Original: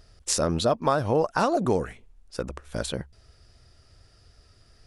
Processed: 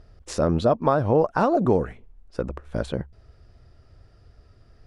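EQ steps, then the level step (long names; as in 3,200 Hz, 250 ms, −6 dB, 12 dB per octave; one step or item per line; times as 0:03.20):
low-pass filter 1,000 Hz 6 dB per octave
+4.5 dB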